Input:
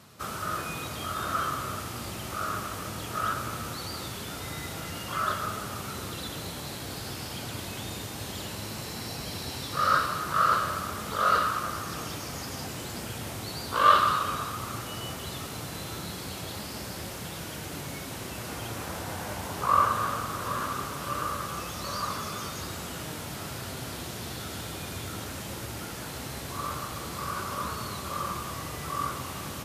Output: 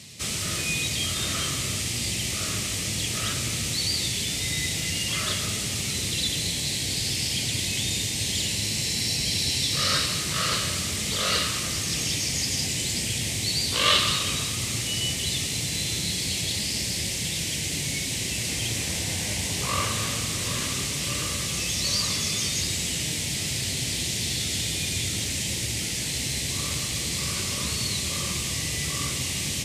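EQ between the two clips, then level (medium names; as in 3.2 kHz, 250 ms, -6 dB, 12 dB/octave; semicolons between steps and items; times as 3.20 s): FFT filter 150 Hz 0 dB, 500 Hz -7 dB, 1.4 kHz -18 dB, 2 kHz +4 dB, 8.2 kHz +9 dB, 13 kHz -4 dB; +7.0 dB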